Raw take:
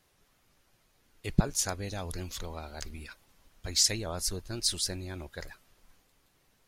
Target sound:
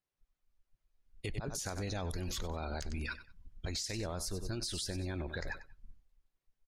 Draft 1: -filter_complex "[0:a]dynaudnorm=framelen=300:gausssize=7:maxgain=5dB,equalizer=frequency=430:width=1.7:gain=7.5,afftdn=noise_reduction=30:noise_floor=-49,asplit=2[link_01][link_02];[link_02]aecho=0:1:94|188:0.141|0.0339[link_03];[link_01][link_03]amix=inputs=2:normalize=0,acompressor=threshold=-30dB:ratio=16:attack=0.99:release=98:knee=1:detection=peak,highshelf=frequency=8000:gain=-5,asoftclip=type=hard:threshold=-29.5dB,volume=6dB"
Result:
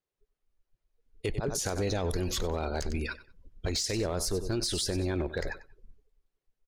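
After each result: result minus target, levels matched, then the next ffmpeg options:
downward compressor: peak gain reduction −6.5 dB; 500 Hz band +3.0 dB
-filter_complex "[0:a]dynaudnorm=framelen=300:gausssize=7:maxgain=5dB,equalizer=frequency=430:width=1.7:gain=7.5,afftdn=noise_reduction=30:noise_floor=-49,asplit=2[link_01][link_02];[link_02]aecho=0:1:94|188:0.141|0.0339[link_03];[link_01][link_03]amix=inputs=2:normalize=0,acompressor=threshold=-38dB:ratio=16:attack=0.99:release=98:knee=1:detection=peak,highshelf=frequency=8000:gain=-5,asoftclip=type=hard:threshold=-29.5dB,volume=6dB"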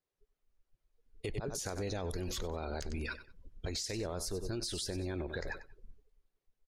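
500 Hz band +3.5 dB
-filter_complex "[0:a]dynaudnorm=framelen=300:gausssize=7:maxgain=5dB,afftdn=noise_reduction=30:noise_floor=-49,asplit=2[link_01][link_02];[link_02]aecho=0:1:94|188:0.141|0.0339[link_03];[link_01][link_03]amix=inputs=2:normalize=0,acompressor=threshold=-38dB:ratio=16:attack=0.99:release=98:knee=1:detection=peak,highshelf=frequency=8000:gain=-5,asoftclip=type=hard:threshold=-29.5dB,volume=6dB"

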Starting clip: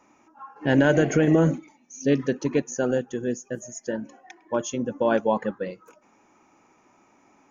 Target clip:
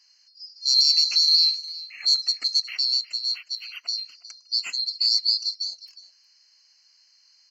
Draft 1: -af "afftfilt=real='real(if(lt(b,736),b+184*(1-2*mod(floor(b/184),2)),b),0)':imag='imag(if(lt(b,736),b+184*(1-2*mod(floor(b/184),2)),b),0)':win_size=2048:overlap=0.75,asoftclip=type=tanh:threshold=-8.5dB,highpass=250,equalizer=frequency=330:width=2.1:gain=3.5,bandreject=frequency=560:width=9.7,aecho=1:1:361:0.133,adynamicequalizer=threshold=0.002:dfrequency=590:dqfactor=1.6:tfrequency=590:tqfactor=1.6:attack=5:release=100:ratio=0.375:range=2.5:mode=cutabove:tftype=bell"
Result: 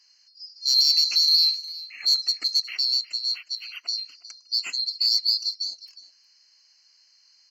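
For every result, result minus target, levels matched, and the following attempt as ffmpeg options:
soft clipping: distortion +13 dB; 250 Hz band +5.0 dB
-af "afftfilt=real='real(if(lt(b,736),b+184*(1-2*mod(floor(b/184),2)),b),0)':imag='imag(if(lt(b,736),b+184*(1-2*mod(floor(b/184),2)),b),0)':win_size=2048:overlap=0.75,asoftclip=type=tanh:threshold=-1.5dB,highpass=250,equalizer=frequency=330:width=2.1:gain=3.5,bandreject=frequency=560:width=9.7,aecho=1:1:361:0.133,adynamicequalizer=threshold=0.002:dfrequency=590:dqfactor=1.6:tfrequency=590:tqfactor=1.6:attack=5:release=100:ratio=0.375:range=2.5:mode=cutabove:tftype=bell"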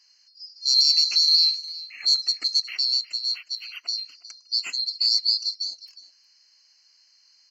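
250 Hz band +4.5 dB
-af "afftfilt=real='real(if(lt(b,736),b+184*(1-2*mod(floor(b/184),2)),b),0)':imag='imag(if(lt(b,736),b+184*(1-2*mod(floor(b/184),2)),b),0)':win_size=2048:overlap=0.75,asoftclip=type=tanh:threshold=-1.5dB,highpass=250,equalizer=frequency=330:width=2.1:gain=-3.5,bandreject=frequency=560:width=9.7,aecho=1:1:361:0.133,adynamicequalizer=threshold=0.002:dfrequency=590:dqfactor=1.6:tfrequency=590:tqfactor=1.6:attack=5:release=100:ratio=0.375:range=2.5:mode=cutabove:tftype=bell"

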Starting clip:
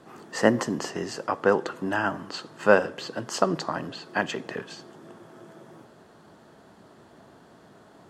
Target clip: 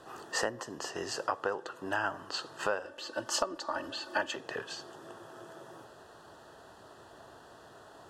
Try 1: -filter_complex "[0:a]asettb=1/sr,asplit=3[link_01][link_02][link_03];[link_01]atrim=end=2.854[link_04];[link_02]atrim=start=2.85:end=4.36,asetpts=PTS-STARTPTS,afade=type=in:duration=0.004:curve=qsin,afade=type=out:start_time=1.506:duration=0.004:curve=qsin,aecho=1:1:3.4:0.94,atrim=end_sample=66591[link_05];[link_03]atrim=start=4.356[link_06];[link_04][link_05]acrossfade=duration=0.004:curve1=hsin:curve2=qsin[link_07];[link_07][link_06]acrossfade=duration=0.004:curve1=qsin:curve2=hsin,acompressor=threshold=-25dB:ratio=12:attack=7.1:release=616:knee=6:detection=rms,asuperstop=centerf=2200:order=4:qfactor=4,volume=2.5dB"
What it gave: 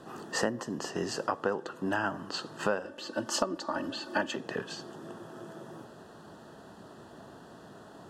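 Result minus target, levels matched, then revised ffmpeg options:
250 Hz band +7.5 dB
-filter_complex "[0:a]asettb=1/sr,asplit=3[link_01][link_02][link_03];[link_01]atrim=end=2.854[link_04];[link_02]atrim=start=2.85:end=4.36,asetpts=PTS-STARTPTS,afade=type=in:duration=0.004:curve=qsin,afade=type=out:start_time=1.506:duration=0.004:curve=qsin,aecho=1:1:3.4:0.94,atrim=end_sample=66591[link_05];[link_03]atrim=start=4.356[link_06];[link_04][link_05]acrossfade=duration=0.004:curve1=hsin:curve2=qsin[link_07];[link_07][link_06]acrossfade=duration=0.004:curve1=qsin:curve2=hsin,acompressor=threshold=-25dB:ratio=12:attack=7.1:release=616:knee=6:detection=rms,asuperstop=centerf=2200:order=4:qfactor=4,equalizer=frequency=200:width_type=o:width=1.3:gain=-14,volume=2.5dB"

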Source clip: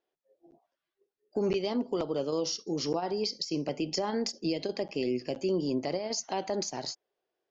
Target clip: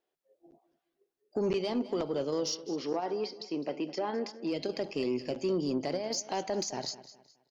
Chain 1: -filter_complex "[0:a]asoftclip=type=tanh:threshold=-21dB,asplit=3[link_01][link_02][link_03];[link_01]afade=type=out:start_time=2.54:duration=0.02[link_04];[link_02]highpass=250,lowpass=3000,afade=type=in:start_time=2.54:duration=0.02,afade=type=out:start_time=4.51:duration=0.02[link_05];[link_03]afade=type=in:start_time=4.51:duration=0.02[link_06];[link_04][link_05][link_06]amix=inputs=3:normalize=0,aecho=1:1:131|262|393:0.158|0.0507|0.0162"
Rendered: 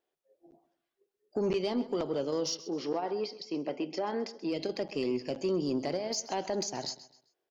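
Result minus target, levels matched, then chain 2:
echo 77 ms early
-filter_complex "[0:a]asoftclip=type=tanh:threshold=-21dB,asplit=3[link_01][link_02][link_03];[link_01]afade=type=out:start_time=2.54:duration=0.02[link_04];[link_02]highpass=250,lowpass=3000,afade=type=in:start_time=2.54:duration=0.02,afade=type=out:start_time=4.51:duration=0.02[link_05];[link_03]afade=type=in:start_time=4.51:duration=0.02[link_06];[link_04][link_05][link_06]amix=inputs=3:normalize=0,aecho=1:1:208|416|624:0.158|0.0507|0.0162"

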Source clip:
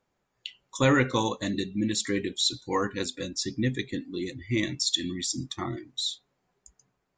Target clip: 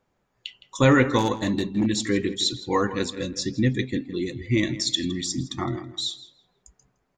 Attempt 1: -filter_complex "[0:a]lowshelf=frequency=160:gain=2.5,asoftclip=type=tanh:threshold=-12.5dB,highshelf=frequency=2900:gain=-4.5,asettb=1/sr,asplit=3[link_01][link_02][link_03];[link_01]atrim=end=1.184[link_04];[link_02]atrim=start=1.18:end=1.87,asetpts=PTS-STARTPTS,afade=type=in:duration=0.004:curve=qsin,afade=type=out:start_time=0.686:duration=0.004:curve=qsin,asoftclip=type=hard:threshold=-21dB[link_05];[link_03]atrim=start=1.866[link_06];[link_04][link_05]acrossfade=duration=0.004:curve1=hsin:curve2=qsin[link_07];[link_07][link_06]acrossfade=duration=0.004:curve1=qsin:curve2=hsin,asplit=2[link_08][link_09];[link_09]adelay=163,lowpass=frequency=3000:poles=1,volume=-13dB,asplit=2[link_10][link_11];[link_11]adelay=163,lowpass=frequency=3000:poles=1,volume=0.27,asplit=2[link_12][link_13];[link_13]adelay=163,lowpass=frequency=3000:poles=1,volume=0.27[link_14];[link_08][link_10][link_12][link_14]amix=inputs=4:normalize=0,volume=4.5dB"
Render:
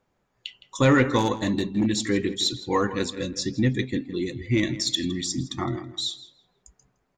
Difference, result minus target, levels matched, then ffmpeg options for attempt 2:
soft clipping: distortion +18 dB
-filter_complex "[0:a]lowshelf=frequency=160:gain=2.5,asoftclip=type=tanh:threshold=-2.5dB,highshelf=frequency=2900:gain=-4.5,asettb=1/sr,asplit=3[link_01][link_02][link_03];[link_01]atrim=end=1.184[link_04];[link_02]atrim=start=1.18:end=1.87,asetpts=PTS-STARTPTS,afade=type=in:duration=0.004:curve=qsin,afade=type=out:start_time=0.686:duration=0.004:curve=qsin,asoftclip=type=hard:threshold=-21dB[link_05];[link_03]atrim=start=1.866[link_06];[link_04][link_05]acrossfade=duration=0.004:curve1=hsin:curve2=qsin[link_07];[link_07][link_06]acrossfade=duration=0.004:curve1=qsin:curve2=hsin,asplit=2[link_08][link_09];[link_09]adelay=163,lowpass=frequency=3000:poles=1,volume=-13dB,asplit=2[link_10][link_11];[link_11]adelay=163,lowpass=frequency=3000:poles=1,volume=0.27,asplit=2[link_12][link_13];[link_13]adelay=163,lowpass=frequency=3000:poles=1,volume=0.27[link_14];[link_08][link_10][link_12][link_14]amix=inputs=4:normalize=0,volume=4.5dB"

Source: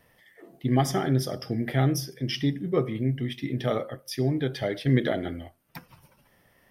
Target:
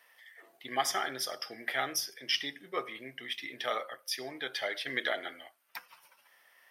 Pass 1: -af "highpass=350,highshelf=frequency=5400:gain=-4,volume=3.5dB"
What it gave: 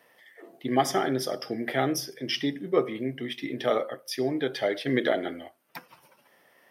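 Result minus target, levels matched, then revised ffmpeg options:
250 Hz band +12.0 dB
-af "highpass=1100,highshelf=frequency=5400:gain=-4,volume=3.5dB"

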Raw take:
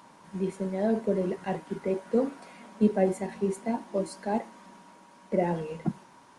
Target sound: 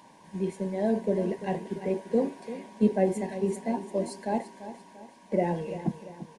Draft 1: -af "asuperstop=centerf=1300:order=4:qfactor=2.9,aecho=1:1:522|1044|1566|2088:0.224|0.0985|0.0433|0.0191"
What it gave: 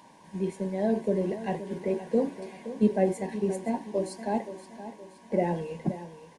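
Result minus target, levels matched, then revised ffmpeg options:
echo 180 ms late
-af "asuperstop=centerf=1300:order=4:qfactor=2.9,aecho=1:1:342|684|1026|1368:0.224|0.0985|0.0433|0.0191"

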